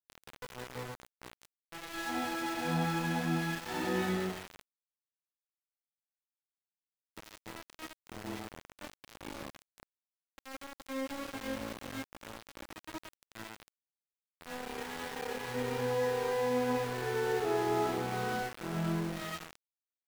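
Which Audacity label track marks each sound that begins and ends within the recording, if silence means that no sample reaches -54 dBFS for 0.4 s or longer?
7.170000	9.830000	sound
10.380000	13.680000	sound
14.410000	19.550000	sound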